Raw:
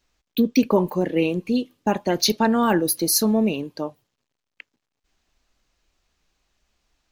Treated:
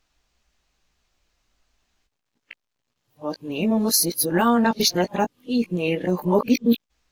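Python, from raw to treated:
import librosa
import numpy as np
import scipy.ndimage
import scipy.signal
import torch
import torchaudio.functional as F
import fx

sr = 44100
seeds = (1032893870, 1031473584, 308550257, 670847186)

y = x[::-1].copy()
y = fx.peak_eq(y, sr, hz=340.0, db=-2.5, octaves=1.0)
y = fx.doubler(y, sr, ms=17.0, db=-8)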